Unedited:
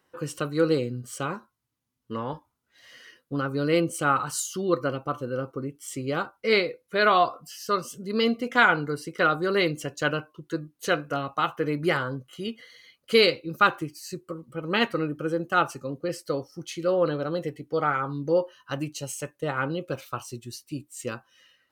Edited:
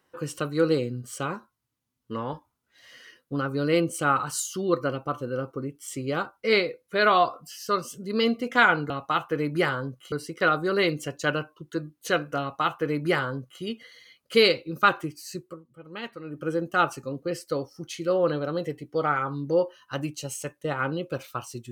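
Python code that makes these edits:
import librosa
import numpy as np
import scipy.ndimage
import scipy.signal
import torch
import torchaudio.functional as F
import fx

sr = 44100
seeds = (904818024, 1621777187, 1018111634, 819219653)

y = fx.edit(x, sr, fx.duplicate(start_s=11.18, length_s=1.22, to_s=8.9),
    fx.fade_down_up(start_s=14.18, length_s=1.07, db=-13.0, fade_s=0.23), tone=tone)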